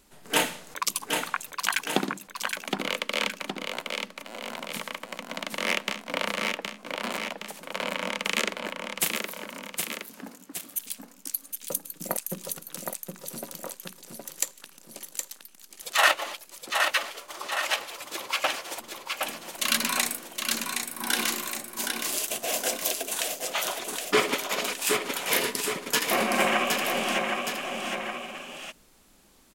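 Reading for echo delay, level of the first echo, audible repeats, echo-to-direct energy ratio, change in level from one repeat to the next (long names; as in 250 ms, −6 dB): 767 ms, −4.5 dB, 2, −3.5 dB, −5.0 dB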